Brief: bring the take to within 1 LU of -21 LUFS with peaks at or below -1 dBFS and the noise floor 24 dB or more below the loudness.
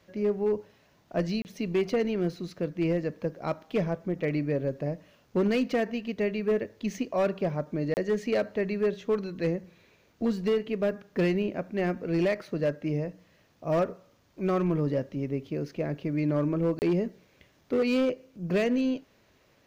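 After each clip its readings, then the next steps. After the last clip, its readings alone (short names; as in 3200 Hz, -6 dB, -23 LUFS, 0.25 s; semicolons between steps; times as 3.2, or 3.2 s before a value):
clipped 1.5%; flat tops at -20.0 dBFS; dropouts 3; longest dropout 29 ms; loudness -29.5 LUFS; peak -20.0 dBFS; loudness target -21.0 LUFS
-> clip repair -20 dBFS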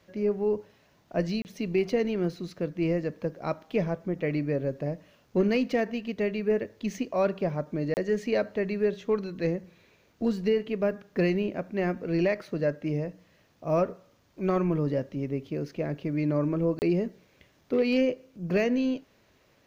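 clipped 0.0%; dropouts 3; longest dropout 29 ms
-> interpolate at 1.42/7.94/16.79, 29 ms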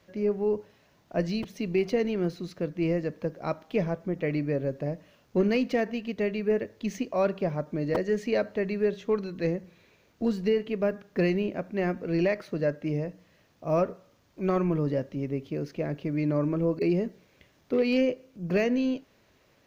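dropouts 0; loudness -29.0 LUFS; peak -13.5 dBFS; loudness target -21.0 LUFS
-> gain +8 dB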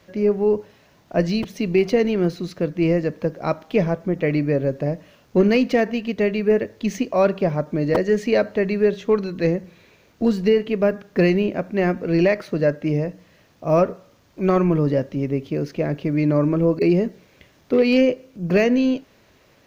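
loudness -21.0 LUFS; peak -5.5 dBFS; noise floor -56 dBFS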